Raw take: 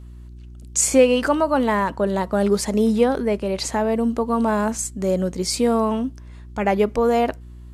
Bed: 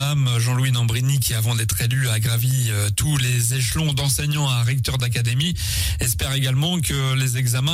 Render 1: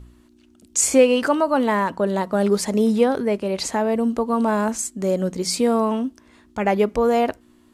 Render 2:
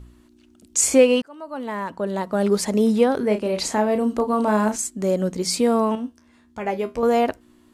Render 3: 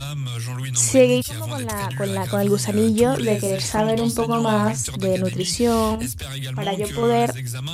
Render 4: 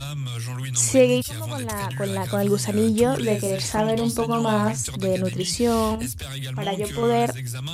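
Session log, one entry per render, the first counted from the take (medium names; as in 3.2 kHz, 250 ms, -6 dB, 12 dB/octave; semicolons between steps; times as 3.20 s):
de-hum 60 Hz, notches 3
1.22–2.60 s: fade in; 3.18–4.76 s: doubling 33 ms -7.5 dB; 5.95–7.03 s: feedback comb 80 Hz, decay 0.21 s, mix 80%
add bed -8.5 dB
trim -2 dB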